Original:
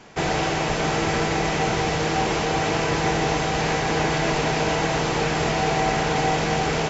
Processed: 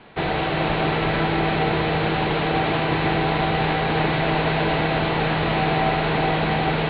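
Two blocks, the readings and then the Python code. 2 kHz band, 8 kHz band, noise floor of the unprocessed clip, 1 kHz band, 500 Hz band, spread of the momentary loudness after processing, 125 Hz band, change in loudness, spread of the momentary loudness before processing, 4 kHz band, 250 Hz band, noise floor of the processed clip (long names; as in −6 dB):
+1.0 dB, can't be measured, −24 dBFS, +1.0 dB, +0.5 dB, 1 LU, +2.5 dB, +1.0 dB, 1 LU, 0.0 dB, +2.0 dB, −23 dBFS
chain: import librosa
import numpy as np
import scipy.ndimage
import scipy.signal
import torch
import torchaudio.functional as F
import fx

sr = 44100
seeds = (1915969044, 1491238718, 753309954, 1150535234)

p1 = scipy.signal.sosfilt(scipy.signal.butter(16, 4200.0, 'lowpass', fs=sr, output='sos'), x)
y = p1 + fx.echo_single(p1, sr, ms=353, db=-4.5, dry=0)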